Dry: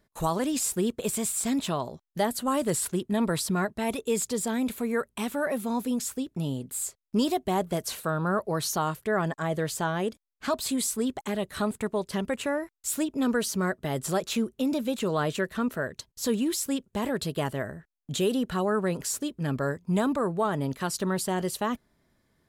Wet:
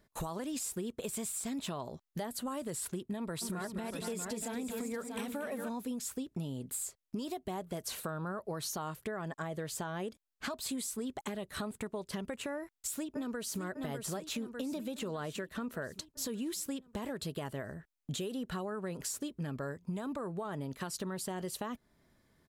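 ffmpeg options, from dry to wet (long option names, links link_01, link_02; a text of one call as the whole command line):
ffmpeg -i in.wav -filter_complex "[0:a]asplit=3[link_01][link_02][link_03];[link_01]afade=type=out:start_time=3.41:duration=0.02[link_04];[link_02]aecho=1:1:233|474|638:0.335|0.211|0.376,afade=type=in:start_time=3.41:duration=0.02,afade=type=out:start_time=5.68:duration=0.02[link_05];[link_03]afade=type=in:start_time=5.68:duration=0.02[link_06];[link_04][link_05][link_06]amix=inputs=3:normalize=0,asplit=2[link_07][link_08];[link_08]afade=type=in:start_time=12.55:duration=0.01,afade=type=out:start_time=13.6:duration=0.01,aecho=0:1:600|1200|1800|2400|3000|3600|4200:0.375837|0.206711|0.113691|0.0625299|0.0343915|0.0189153|0.0104034[link_09];[link_07][link_09]amix=inputs=2:normalize=0,alimiter=limit=-23.5dB:level=0:latency=1:release=397,acompressor=threshold=-35dB:ratio=6" out.wav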